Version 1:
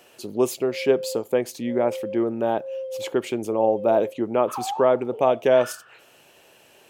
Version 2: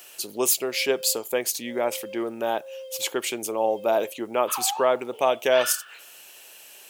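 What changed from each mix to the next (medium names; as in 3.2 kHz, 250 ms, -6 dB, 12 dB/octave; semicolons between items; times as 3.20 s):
background: add tilt EQ +4 dB/octave; master: add tilt EQ +4 dB/octave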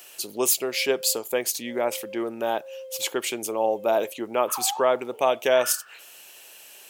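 background: add Gaussian low-pass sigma 3.9 samples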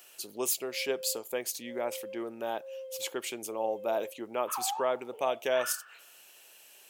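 speech -8.5 dB; background -3.0 dB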